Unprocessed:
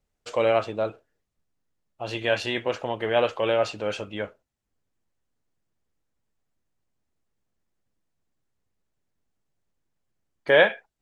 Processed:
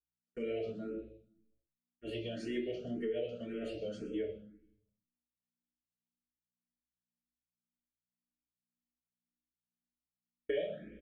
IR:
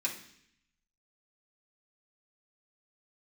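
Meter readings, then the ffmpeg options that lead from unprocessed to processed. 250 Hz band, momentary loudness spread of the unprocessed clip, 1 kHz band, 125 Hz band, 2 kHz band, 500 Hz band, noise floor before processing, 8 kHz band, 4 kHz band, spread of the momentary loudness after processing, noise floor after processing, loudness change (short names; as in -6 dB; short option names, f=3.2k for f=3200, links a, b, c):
-5.5 dB, 15 LU, -28.5 dB, -11.5 dB, -24.5 dB, -14.5 dB, -80 dBFS, n/a, -18.5 dB, 13 LU, under -85 dBFS, -15.0 dB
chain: -filter_complex "[0:a]aeval=exprs='val(0)+0.00398*(sin(2*PI*60*n/s)+sin(2*PI*2*60*n/s)/2+sin(2*PI*3*60*n/s)/3+sin(2*PI*4*60*n/s)/4+sin(2*PI*5*60*n/s)/5)':c=same,firequalizer=gain_entry='entry(240,0);entry(880,-21);entry(4200,-30)':delay=0.05:min_phase=1,aecho=1:1:125:0.141,agate=range=-48dB:threshold=-40dB:ratio=16:detection=peak,flanger=delay=1.5:depth=2.5:regen=71:speed=0.28:shape=triangular,highshelf=f=6k:g=-6.5,asplit=2[a][b];[b]adelay=27,volume=-11dB[c];[a][c]amix=inputs=2:normalize=0[d];[1:a]atrim=start_sample=2205,asetrate=52920,aresample=44100[e];[d][e]afir=irnorm=-1:irlink=0,crystalizer=i=7:c=0,asuperstop=centerf=950:order=8:qfactor=1.5,acompressor=threshold=-39dB:ratio=10,asplit=2[f][g];[g]afreqshift=1.9[h];[f][h]amix=inputs=2:normalize=1,volume=7.5dB"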